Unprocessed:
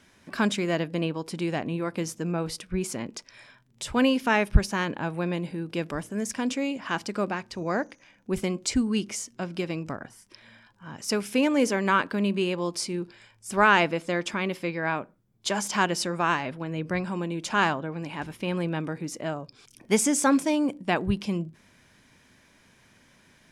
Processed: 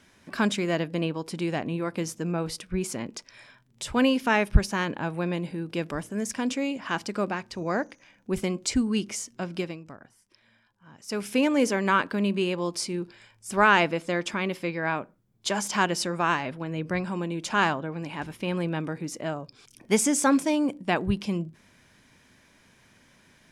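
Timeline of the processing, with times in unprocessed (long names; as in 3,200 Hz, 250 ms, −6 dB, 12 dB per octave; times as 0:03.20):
0:09.61–0:11.24: duck −10.5 dB, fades 0.17 s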